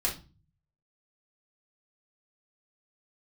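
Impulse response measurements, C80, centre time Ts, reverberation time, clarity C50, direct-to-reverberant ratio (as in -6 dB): 17.5 dB, 21 ms, no single decay rate, 10.0 dB, -5.0 dB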